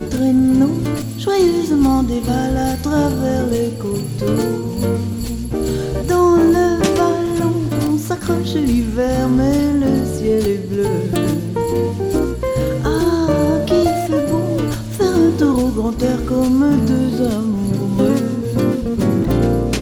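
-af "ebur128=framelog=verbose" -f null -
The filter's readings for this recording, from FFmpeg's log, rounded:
Integrated loudness:
  I:         -16.8 LUFS
  Threshold: -26.8 LUFS
Loudness range:
  LRA:         2.3 LU
  Threshold: -36.9 LUFS
  LRA low:   -18.3 LUFS
  LRA high:  -16.0 LUFS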